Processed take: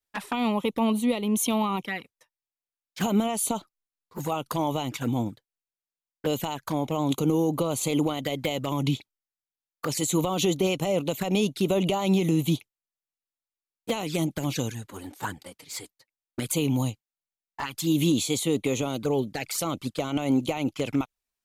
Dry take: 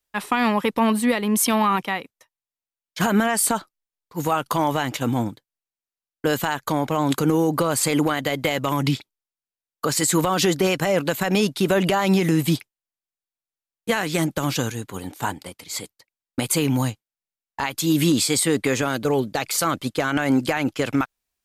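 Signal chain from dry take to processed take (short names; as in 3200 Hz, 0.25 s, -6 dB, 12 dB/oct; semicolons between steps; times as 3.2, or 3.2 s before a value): envelope flanger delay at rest 12 ms, full sweep at -19 dBFS; gain -3.5 dB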